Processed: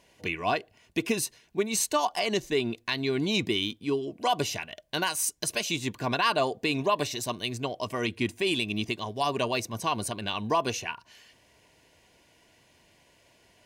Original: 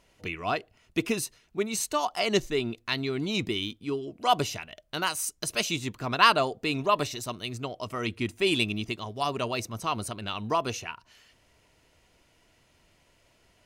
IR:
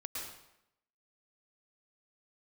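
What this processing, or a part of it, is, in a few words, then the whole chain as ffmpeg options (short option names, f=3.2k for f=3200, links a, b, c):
PA system with an anti-feedback notch: -af "highpass=f=120:p=1,asuperstop=centerf=1300:order=12:qfactor=6.5,alimiter=limit=-19dB:level=0:latency=1:release=166,volume=3.5dB"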